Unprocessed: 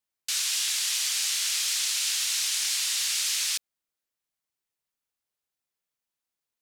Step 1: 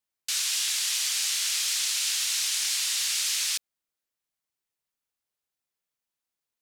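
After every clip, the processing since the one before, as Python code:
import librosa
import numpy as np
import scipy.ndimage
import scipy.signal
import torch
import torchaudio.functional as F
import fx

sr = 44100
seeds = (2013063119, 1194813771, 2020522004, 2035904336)

y = x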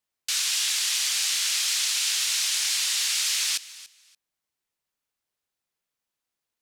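y = fx.high_shelf(x, sr, hz=7100.0, db=-4.0)
y = fx.echo_feedback(y, sr, ms=287, feedback_pct=19, wet_db=-18.0)
y = y * 10.0 ** (3.5 / 20.0)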